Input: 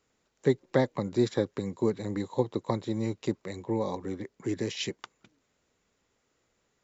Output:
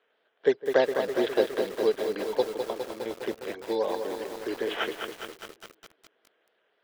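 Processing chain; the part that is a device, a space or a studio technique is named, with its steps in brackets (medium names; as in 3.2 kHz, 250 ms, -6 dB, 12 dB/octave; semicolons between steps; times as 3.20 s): circuit-bent sampling toy (decimation with a swept rate 8×, swing 60% 3.8 Hz; cabinet simulation 410–4200 Hz, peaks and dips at 440 Hz +8 dB, 660 Hz +8 dB, 1.6 kHz +9 dB, 3.2 kHz +9 dB); 2.42–3.06 s: ten-band graphic EQ 125 Hz -9 dB, 250 Hz -4 dB, 500 Hz -6 dB, 1 kHz -3 dB, 2 kHz -11 dB, 4 kHz -11 dB; filtered feedback delay 158 ms, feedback 68%, low-pass 1.2 kHz, level -18 dB; bit-crushed delay 205 ms, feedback 80%, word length 7-bit, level -6.5 dB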